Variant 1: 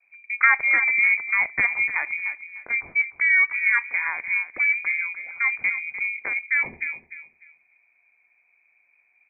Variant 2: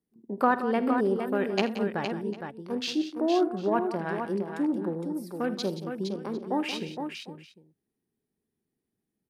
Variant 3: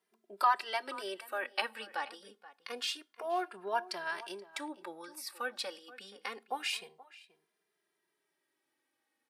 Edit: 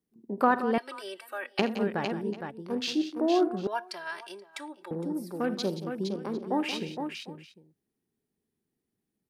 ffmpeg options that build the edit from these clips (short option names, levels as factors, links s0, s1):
-filter_complex "[2:a]asplit=2[s0][s1];[1:a]asplit=3[s2][s3][s4];[s2]atrim=end=0.782[s5];[s0]atrim=start=0.778:end=1.592[s6];[s3]atrim=start=1.588:end=3.672[s7];[s1]atrim=start=3.668:end=4.912[s8];[s4]atrim=start=4.908[s9];[s5][s6]acrossfade=d=0.004:c1=hsin:c2=hsin[s10];[s10][s7]acrossfade=d=0.004:c1=hsin:c2=hsin[s11];[s11][s8]acrossfade=d=0.004:c1=hsin:c2=hsin[s12];[s12][s9]acrossfade=d=0.004:c1=hsin:c2=hsin"